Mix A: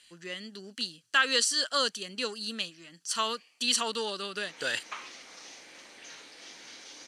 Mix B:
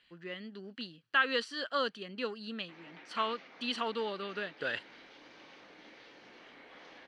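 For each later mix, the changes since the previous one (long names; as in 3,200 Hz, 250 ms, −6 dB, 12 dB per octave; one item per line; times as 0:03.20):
background: entry −1.75 s
master: add high-frequency loss of the air 390 metres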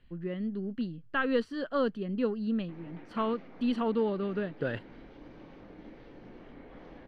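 master: remove meter weighting curve ITU-R 468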